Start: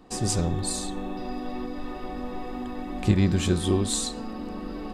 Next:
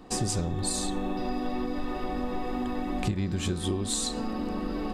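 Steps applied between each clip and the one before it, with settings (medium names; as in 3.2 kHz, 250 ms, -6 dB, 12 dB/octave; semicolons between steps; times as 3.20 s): compression 16:1, threshold -28 dBFS, peak gain reduction 15 dB; trim +3.5 dB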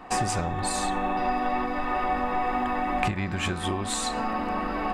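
high-order bell 1.3 kHz +12.5 dB 2.4 oct; trim -1 dB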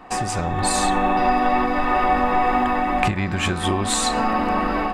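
level rider gain up to 7 dB; trim +1 dB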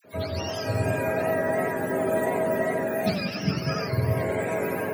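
spectrum inverted on a logarithmic axis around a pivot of 690 Hz; phase dispersion lows, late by 48 ms, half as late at 1.1 kHz; modulated delay 93 ms, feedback 59%, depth 200 cents, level -8 dB; trim -6 dB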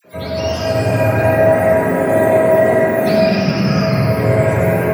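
reverberation RT60 3.5 s, pre-delay 6 ms, DRR -5 dB; trim +4.5 dB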